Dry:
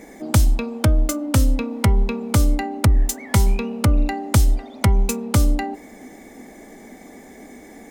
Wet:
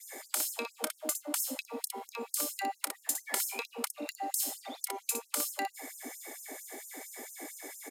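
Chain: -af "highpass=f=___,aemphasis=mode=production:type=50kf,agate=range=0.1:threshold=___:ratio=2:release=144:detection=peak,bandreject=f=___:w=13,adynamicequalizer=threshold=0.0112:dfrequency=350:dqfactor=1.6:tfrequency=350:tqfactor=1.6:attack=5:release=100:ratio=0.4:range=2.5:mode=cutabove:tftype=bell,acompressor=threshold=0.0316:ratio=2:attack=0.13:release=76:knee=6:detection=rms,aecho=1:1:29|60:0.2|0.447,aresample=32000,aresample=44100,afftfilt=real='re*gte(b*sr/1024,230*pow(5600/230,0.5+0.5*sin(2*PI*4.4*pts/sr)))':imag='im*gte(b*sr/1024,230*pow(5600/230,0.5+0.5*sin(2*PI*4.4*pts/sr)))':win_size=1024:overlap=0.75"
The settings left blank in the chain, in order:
140, 0.0126, 5900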